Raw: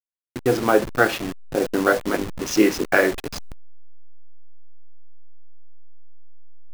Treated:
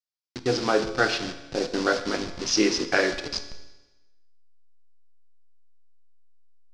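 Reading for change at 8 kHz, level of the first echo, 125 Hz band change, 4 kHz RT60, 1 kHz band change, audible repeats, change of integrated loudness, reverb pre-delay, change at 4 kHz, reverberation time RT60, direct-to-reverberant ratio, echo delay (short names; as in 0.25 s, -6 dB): +0.5 dB, none, -5.0 dB, 1.1 s, -4.5 dB, none, -4.5 dB, 12 ms, +4.5 dB, 1.1 s, 8.5 dB, none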